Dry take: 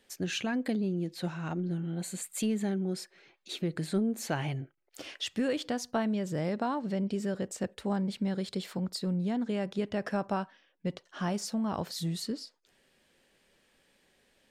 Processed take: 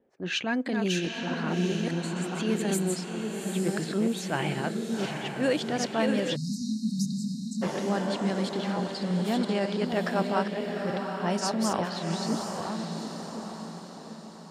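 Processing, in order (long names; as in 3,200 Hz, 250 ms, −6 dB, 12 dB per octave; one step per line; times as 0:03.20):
delay that plays each chunk backwards 642 ms, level −5.5 dB
transient designer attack −9 dB, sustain −5 dB
high-pass filter 61 Hz 6 dB per octave
high-shelf EQ 8,300 Hz +5 dB
low-pass that shuts in the quiet parts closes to 510 Hz, open at −27.5 dBFS
low-shelf EQ 170 Hz −10.5 dB
on a send: feedback delay with all-pass diffusion 786 ms, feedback 49%, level −5 dB
on the sum: time-frequency box erased 0:06.36–0:07.62, 260–3,700 Hz
level +7.5 dB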